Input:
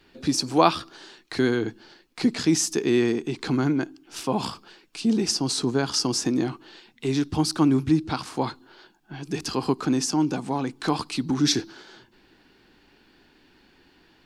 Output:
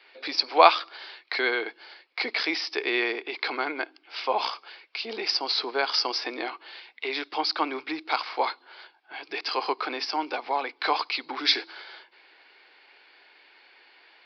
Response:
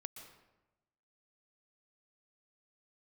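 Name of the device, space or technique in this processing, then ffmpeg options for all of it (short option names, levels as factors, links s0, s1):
musical greeting card: -af "aresample=11025,aresample=44100,highpass=f=510:w=0.5412,highpass=f=510:w=1.3066,equalizer=f=2200:t=o:w=0.22:g=10.5,volume=1.5"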